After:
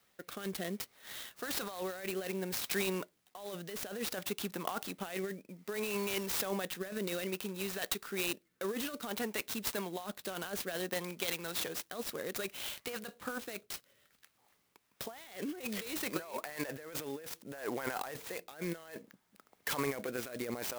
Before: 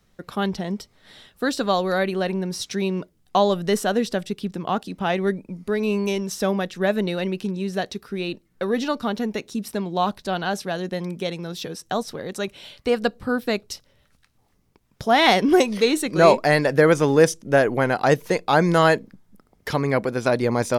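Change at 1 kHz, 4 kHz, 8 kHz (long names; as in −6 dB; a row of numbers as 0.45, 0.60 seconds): −20.5, −11.5, −6.0 decibels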